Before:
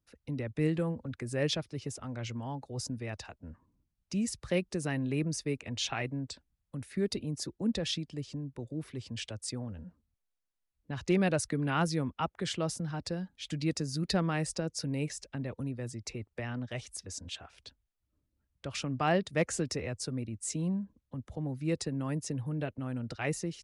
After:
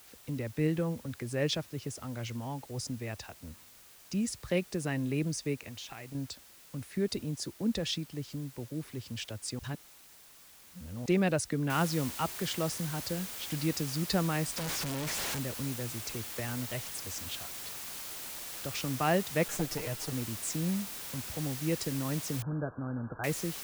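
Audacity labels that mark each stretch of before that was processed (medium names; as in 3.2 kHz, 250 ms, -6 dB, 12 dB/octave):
5.620000	6.150000	compression 12:1, threshold -40 dBFS
9.590000	11.060000	reverse
11.700000	11.700000	noise floor step -56 dB -42 dB
14.570000	15.390000	Schmitt trigger flips at -46 dBFS
19.480000	20.130000	comb filter that takes the minimum delay 6.5 ms
22.420000	23.240000	brick-wall FIR low-pass 1.7 kHz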